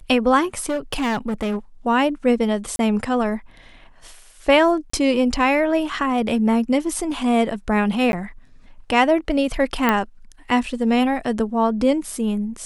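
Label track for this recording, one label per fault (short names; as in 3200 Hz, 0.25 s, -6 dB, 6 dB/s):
0.650000	1.570000	clipped -19 dBFS
2.760000	2.790000	gap 32 ms
4.900000	4.930000	gap 34 ms
8.120000	8.130000	gap 11 ms
9.890000	9.890000	pop -5 dBFS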